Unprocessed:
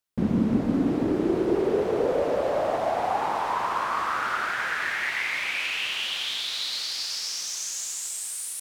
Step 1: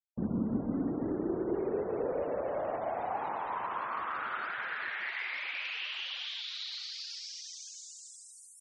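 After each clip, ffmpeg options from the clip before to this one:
-filter_complex "[0:a]afftfilt=real='re*gte(hypot(re,im),0.0158)':imag='im*gte(hypot(re,im),0.0158)':win_size=1024:overlap=0.75,acrossover=split=5800[a][b];[b]acompressor=threshold=-49dB:ratio=4:attack=1:release=60[c];[a][c]amix=inputs=2:normalize=0,volume=-9dB"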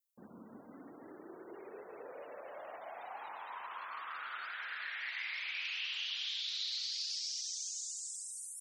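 -af "aderivative,volume=7dB"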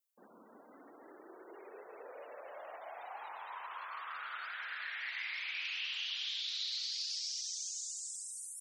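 -af "highpass=410"

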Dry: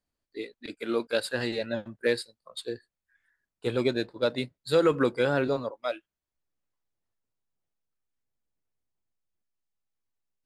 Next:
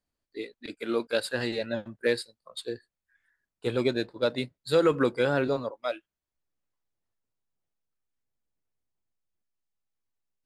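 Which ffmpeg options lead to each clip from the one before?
-af anull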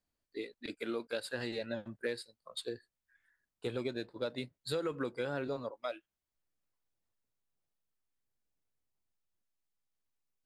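-af "acompressor=threshold=-34dB:ratio=3,volume=-2dB"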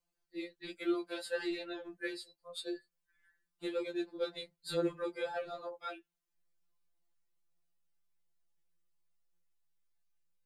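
-af "afftfilt=real='re*2.83*eq(mod(b,8),0)':imag='im*2.83*eq(mod(b,8),0)':win_size=2048:overlap=0.75,volume=2dB"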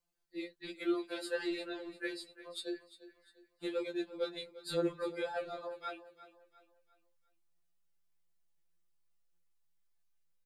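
-af "aecho=1:1:349|698|1047|1396:0.158|0.0634|0.0254|0.0101"

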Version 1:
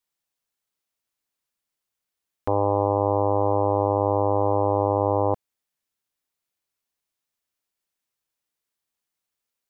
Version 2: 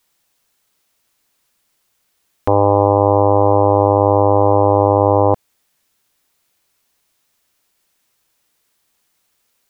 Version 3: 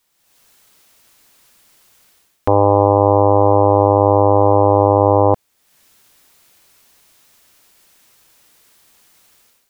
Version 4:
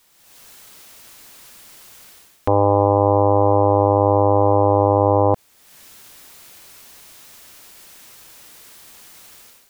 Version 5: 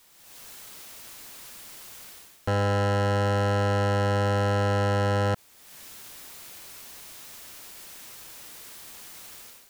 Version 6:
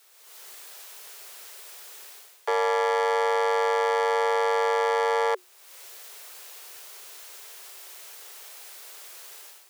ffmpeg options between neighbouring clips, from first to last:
-af "alimiter=level_in=19.5dB:limit=-1dB:release=50:level=0:latency=1,volume=-1dB"
-af "dynaudnorm=f=120:g=5:m=13.5dB,volume=-1dB"
-af "alimiter=level_in=13dB:limit=-1dB:release=50:level=0:latency=1,volume=-4dB"
-af "asoftclip=type=hard:threshold=-21dB"
-af "afreqshift=360"

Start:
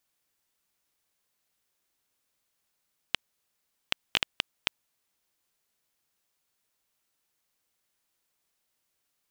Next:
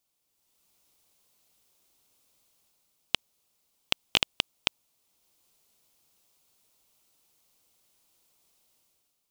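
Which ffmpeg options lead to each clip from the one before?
-af "equalizer=f=1.7k:t=o:w=0.72:g=-10,dynaudnorm=f=110:g=9:m=10dB"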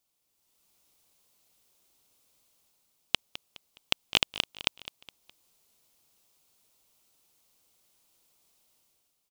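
-af "aecho=1:1:208|416|624:0.168|0.0655|0.0255"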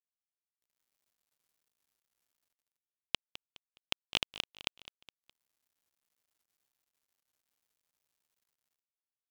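-af "acrusher=bits=9:mix=0:aa=0.000001,volume=-7.5dB"

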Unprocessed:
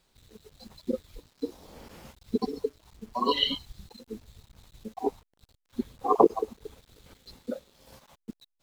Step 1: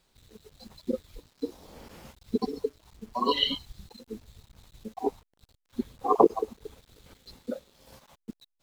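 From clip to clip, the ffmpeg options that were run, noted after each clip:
-af anull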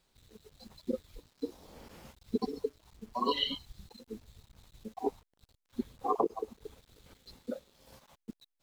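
-af "alimiter=limit=-13.5dB:level=0:latency=1:release=388,volume=-4dB"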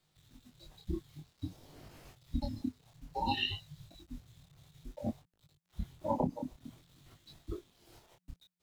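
-af "afreqshift=-180,flanger=delay=20:depth=7.8:speed=0.55,volume=1dB"

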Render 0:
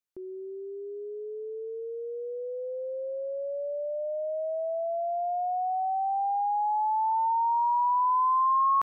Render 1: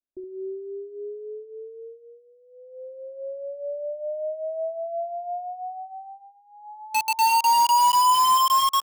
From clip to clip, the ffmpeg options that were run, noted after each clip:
-filter_complex "[0:a]aecho=1:1:3.1:0.93,aecho=1:1:31|68:0.211|0.355,acrossover=split=500|580[a][b][c];[c]acrusher=bits=3:mix=0:aa=0.000001[d];[a][b][d]amix=inputs=3:normalize=0"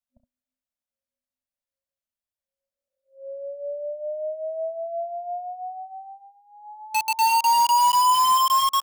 -af "afftfilt=real='re*(1-between(b*sr/4096,250,540))':imag='im*(1-between(b*sr/4096,250,540))':win_size=4096:overlap=0.75"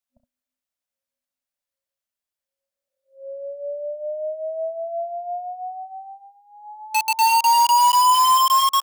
-af "lowshelf=f=340:g=-6.5,volume=3.5dB"

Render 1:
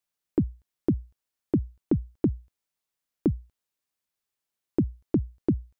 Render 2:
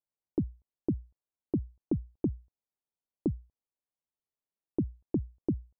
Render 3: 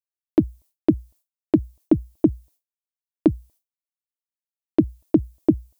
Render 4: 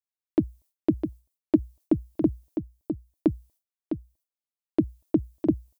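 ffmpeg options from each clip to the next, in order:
-af "lowpass=f=1k:w=0.5412,lowpass=f=1k:w=1.3066,volume=-6dB"
-af "agate=range=-33dB:threshold=-56dB:ratio=3:detection=peak,equalizer=f=315:t=o:w=0.33:g=10,equalizer=f=630:t=o:w=0.33:g=11,equalizer=f=1k:t=o:w=0.33:g=4,crystalizer=i=8.5:c=0,volume=6.5dB"
-af "aecho=1:1:656:0.422,volume=-5.5dB"

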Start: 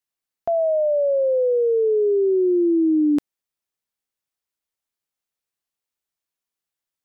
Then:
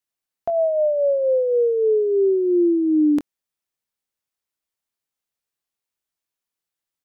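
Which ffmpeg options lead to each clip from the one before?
-filter_complex "[0:a]asplit=2[a][b];[b]adelay=23,volume=-12.5dB[c];[a][c]amix=inputs=2:normalize=0"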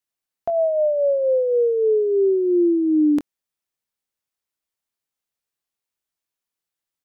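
-af anull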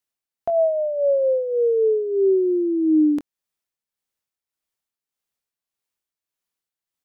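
-af "tremolo=f=1.7:d=0.54,volume=1.5dB"

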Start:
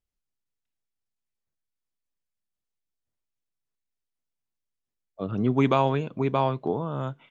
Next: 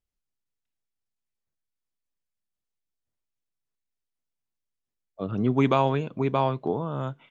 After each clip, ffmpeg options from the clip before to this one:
-af anull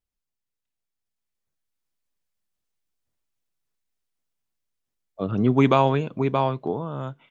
-af "dynaudnorm=f=250:g=11:m=6.5dB,volume=-1dB"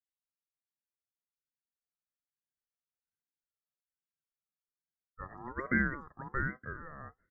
-filter_complex "[0:a]afftfilt=real='re*(1-between(b*sr/4096,1400,4100))':imag='im*(1-between(b*sr/4096,1400,4100))':win_size=4096:overlap=0.75,asplit=3[a][b][c];[a]bandpass=f=730:t=q:w=8,volume=0dB[d];[b]bandpass=f=1.09k:t=q:w=8,volume=-6dB[e];[c]bandpass=f=2.44k:t=q:w=8,volume=-9dB[f];[d][e][f]amix=inputs=3:normalize=0,aeval=exprs='val(0)*sin(2*PI*720*n/s+720*0.25/1.2*sin(2*PI*1.2*n/s))':c=same"

